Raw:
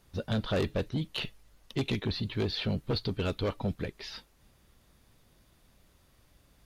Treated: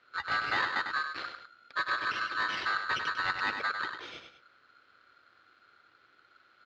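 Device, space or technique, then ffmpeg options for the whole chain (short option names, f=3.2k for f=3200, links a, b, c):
ring modulator pedal into a guitar cabinet: -filter_complex "[0:a]asettb=1/sr,asplit=3[a][b][c];[a]atrim=end=0.594[d];[b]atrim=start=0.59:end=1.97,asetpts=PTS-STARTPTS,afade=t=in:d=0.004:c=qsin,afade=t=out:st=1.376:d=0.004:c=qsin,acrossover=split=2900[e][f];[f]acompressor=threshold=-44dB:ratio=4:attack=1:release=60[g];[e][g]amix=inputs=2:normalize=0[h];[c]atrim=start=1.966[i];[d][h]acrossfade=d=0.004:c1=hsin:c2=qsin[j];[j][i]acrossfade=d=0.004:c1=qsin:c2=hsin,aecho=1:1:99|204:0.473|0.178,aeval=exprs='val(0)*sgn(sin(2*PI*1400*n/s))':c=same,highpass=80,equalizer=f=180:t=q:w=4:g=-6,equalizer=f=340:t=q:w=4:g=5,equalizer=f=530:t=q:w=4:g=3,equalizer=f=890:t=q:w=4:g=-6,lowpass=f=3.9k:w=0.5412,lowpass=f=3.9k:w=1.3066"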